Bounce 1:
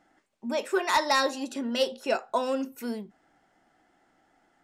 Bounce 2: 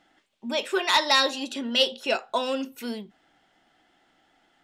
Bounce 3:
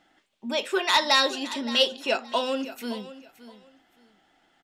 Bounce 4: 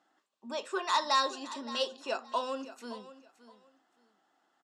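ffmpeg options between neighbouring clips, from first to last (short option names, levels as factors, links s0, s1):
-af "equalizer=f=3300:t=o:w=0.97:g=12"
-af "aecho=1:1:570|1140:0.168|0.0369"
-af "highpass=250,equalizer=f=1100:t=q:w=4:g=9,equalizer=f=2200:t=q:w=4:g=-9,equalizer=f=3200:t=q:w=4:g=-6,equalizer=f=7400:t=q:w=4:g=3,lowpass=f=9200:w=0.5412,lowpass=f=9200:w=1.3066,volume=0.376"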